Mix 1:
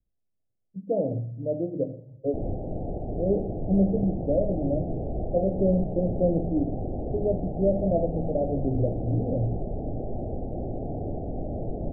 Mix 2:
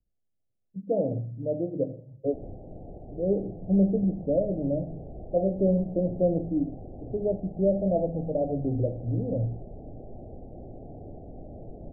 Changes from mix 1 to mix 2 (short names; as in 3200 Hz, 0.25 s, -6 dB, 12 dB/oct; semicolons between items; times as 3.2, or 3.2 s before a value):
speech: send -6.0 dB; background -11.0 dB